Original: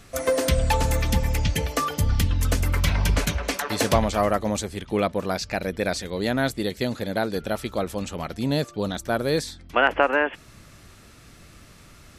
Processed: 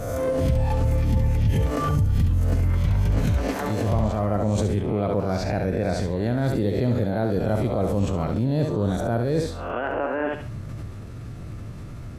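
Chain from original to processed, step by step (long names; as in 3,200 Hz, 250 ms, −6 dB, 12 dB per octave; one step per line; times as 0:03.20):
peak hold with a rise ahead of every peak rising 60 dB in 0.49 s
parametric band 110 Hz +9 dB 0.74 octaves
feedback echo with a high-pass in the loop 69 ms, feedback 28%, high-pass 320 Hz, level −7 dB
reversed playback
downward compressor 10 to 1, threshold −26 dBFS, peak gain reduction 16 dB
reversed playback
tilt shelving filter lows +8.5 dB, about 1,200 Hz
background raised ahead of every attack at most 32 dB per second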